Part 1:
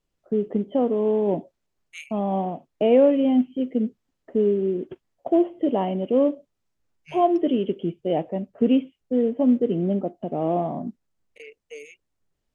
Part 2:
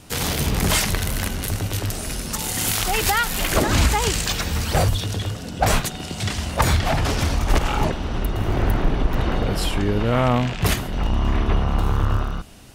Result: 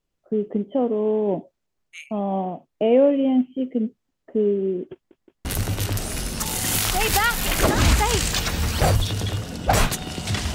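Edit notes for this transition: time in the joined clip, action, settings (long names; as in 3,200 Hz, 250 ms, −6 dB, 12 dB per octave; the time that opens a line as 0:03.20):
part 1
0:04.94: stutter in place 0.17 s, 3 plays
0:05.45: continue with part 2 from 0:01.38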